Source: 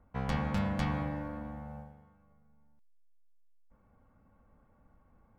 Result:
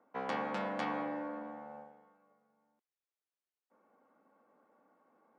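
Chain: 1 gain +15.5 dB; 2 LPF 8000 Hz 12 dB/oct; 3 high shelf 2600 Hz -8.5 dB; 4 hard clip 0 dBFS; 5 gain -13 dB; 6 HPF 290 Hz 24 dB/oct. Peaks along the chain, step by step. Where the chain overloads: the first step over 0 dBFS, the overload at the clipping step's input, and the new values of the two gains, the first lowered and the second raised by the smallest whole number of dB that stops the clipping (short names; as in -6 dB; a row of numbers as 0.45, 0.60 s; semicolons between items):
-3.5, -3.5, -3.5, -3.5, -16.5, -23.5 dBFS; no overload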